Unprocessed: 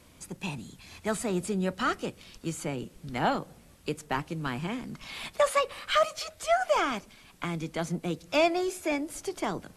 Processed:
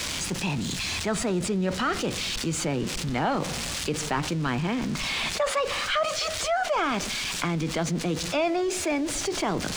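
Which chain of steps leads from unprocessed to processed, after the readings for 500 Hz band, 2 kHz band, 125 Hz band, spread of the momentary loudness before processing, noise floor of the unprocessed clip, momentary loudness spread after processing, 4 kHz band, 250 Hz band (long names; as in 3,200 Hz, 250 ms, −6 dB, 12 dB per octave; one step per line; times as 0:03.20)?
+1.5 dB, +4.5 dB, +6.5 dB, 13 LU, −56 dBFS, 3 LU, +8.5 dB, +5.0 dB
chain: spike at every zero crossing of −28.5 dBFS
high-frequency loss of the air 120 metres
envelope flattener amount 70%
level −2.5 dB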